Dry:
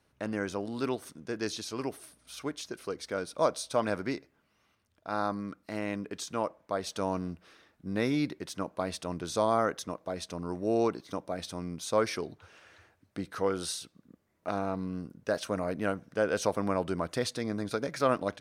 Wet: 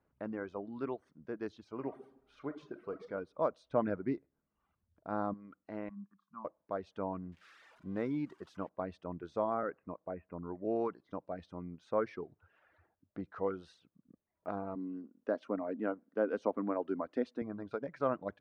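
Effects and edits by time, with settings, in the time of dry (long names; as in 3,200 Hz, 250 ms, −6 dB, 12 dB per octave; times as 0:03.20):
0:01.75–0:03.06: thrown reverb, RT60 0.97 s, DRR 3.5 dB
0:03.70–0:05.34: low-shelf EQ 400 Hz +8 dB
0:05.89–0:06.45: pair of resonant band-passes 470 Hz, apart 2.5 octaves
0:07.32–0:08.69: spike at every zero crossing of −28 dBFS
0:09.63–0:10.65: Butterworth low-pass 2,600 Hz 96 dB per octave
0:14.75–0:17.42: low shelf with overshoot 180 Hz −11 dB, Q 3
whole clip: low-pass filter 1,400 Hz 12 dB per octave; reverb reduction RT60 0.87 s; parametric band 110 Hz −7 dB 0.23 octaves; level −5 dB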